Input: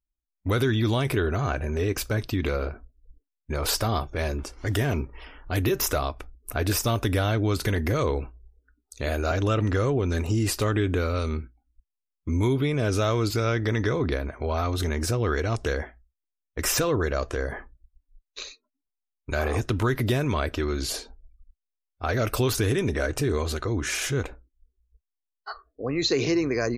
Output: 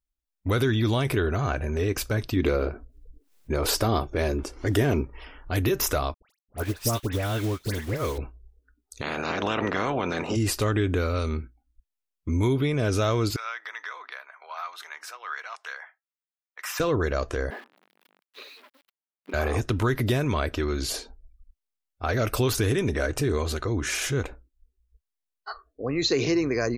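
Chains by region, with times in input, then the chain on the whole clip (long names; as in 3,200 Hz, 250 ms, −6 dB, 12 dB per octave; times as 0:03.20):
0:02.36–0:05.03: parametric band 350 Hz +6.5 dB 1.2 octaves + upward compression, threshold −38 dBFS
0:06.14–0:08.18: bit-depth reduction 6 bits, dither none + all-pass dispersion highs, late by 99 ms, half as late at 1,600 Hz + expander for the loud parts 2.5 to 1, over −36 dBFS
0:09.01–0:10.35: ceiling on every frequency bin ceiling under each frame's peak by 26 dB + high-pass filter 120 Hz + head-to-tape spacing loss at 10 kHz 26 dB
0:13.36–0:16.80: high-pass filter 990 Hz 24 dB per octave + parametric band 8,600 Hz −12 dB 2.5 octaves
0:17.50–0:19.34: spike at every zero crossing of −24.5 dBFS + linear-phase brick-wall high-pass 180 Hz + high-frequency loss of the air 420 metres
whole clip: no processing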